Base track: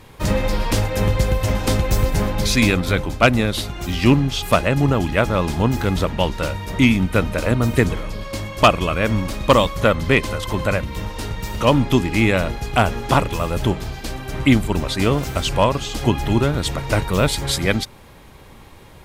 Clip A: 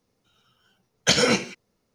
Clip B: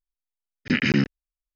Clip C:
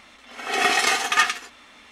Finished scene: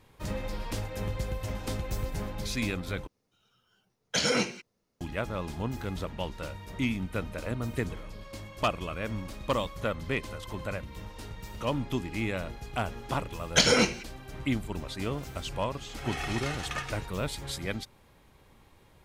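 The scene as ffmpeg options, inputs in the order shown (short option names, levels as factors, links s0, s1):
-filter_complex "[1:a]asplit=2[s0][s1];[0:a]volume=0.178[s2];[s0]alimiter=limit=0.282:level=0:latency=1:release=12[s3];[3:a]acrossover=split=1400|4500[s4][s5][s6];[s4]acompressor=threshold=0.0355:ratio=4[s7];[s5]acompressor=threshold=0.0447:ratio=4[s8];[s6]acompressor=threshold=0.0141:ratio=4[s9];[s7][s8][s9]amix=inputs=3:normalize=0[s10];[s2]asplit=2[s11][s12];[s11]atrim=end=3.074[s13];[s3]atrim=end=1.94,asetpts=PTS-STARTPTS,volume=0.531[s14];[s12]atrim=start=5.006[s15];[s1]atrim=end=1.94,asetpts=PTS-STARTPTS,volume=0.75,afade=t=in:d=0.004:c=hsin,afade=t=out:st=1.936:d=0.004:c=hsin,adelay=12490[s16];[s10]atrim=end=1.91,asetpts=PTS-STARTPTS,volume=0.282,afade=t=in:d=0.004:c=hsin,afade=t=out:st=1.906:d=0.004:c=hsin,adelay=15590[s17];[s13][s14]acrossfade=d=0.004:c1=hsin:c2=hsin[s18];[s18][s15]acrossfade=d=0.004:c1=hsin:c2=hsin[s19];[s19][s16][s17]amix=inputs=3:normalize=0"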